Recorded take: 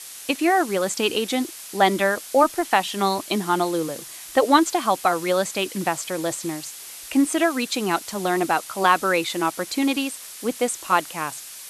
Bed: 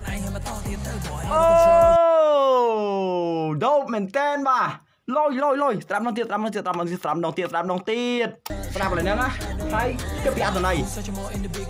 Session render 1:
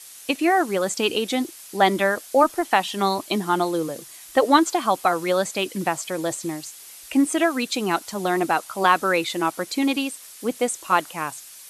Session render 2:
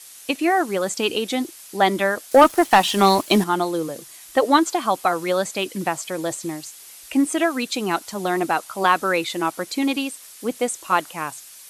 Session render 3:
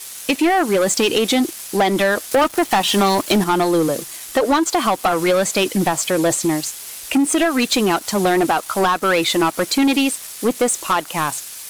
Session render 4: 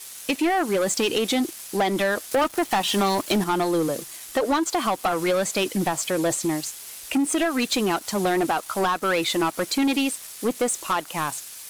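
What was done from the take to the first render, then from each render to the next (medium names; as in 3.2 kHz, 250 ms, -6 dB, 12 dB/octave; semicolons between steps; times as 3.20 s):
noise reduction 6 dB, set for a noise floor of -39 dBFS
2.31–3.44 s: waveshaping leveller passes 2
compression 10:1, threshold -20 dBFS, peak gain reduction 12 dB; waveshaping leveller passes 3
trim -6 dB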